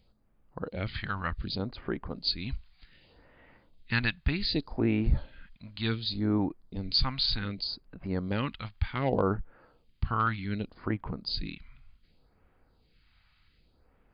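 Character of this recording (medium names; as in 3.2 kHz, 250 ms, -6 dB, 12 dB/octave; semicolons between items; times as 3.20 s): phasing stages 2, 0.66 Hz, lowest notch 380–4000 Hz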